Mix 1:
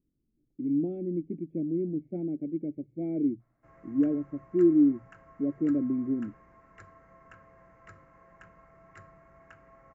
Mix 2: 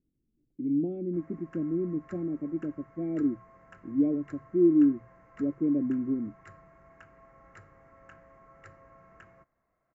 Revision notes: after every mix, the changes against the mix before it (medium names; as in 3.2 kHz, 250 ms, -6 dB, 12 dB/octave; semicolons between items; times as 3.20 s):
background: entry -2.50 s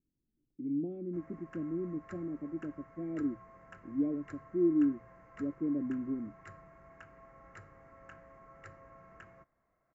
speech -6.5 dB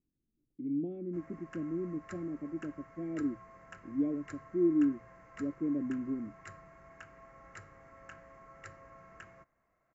master: add treble shelf 2.6 kHz +10 dB